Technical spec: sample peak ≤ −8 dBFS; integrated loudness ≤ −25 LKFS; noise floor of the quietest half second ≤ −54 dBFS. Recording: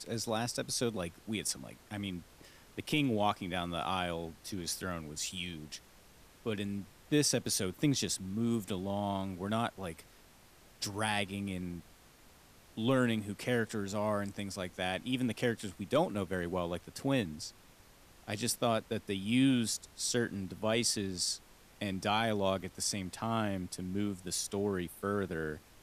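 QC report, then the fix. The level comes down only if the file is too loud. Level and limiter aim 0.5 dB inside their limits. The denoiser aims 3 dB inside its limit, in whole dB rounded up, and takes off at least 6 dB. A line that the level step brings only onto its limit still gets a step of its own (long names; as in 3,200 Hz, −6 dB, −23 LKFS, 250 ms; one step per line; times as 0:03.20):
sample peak −17.5 dBFS: in spec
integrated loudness −34.5 LKFS: in spec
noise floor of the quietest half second −60 dBFS: in spec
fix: no processing needed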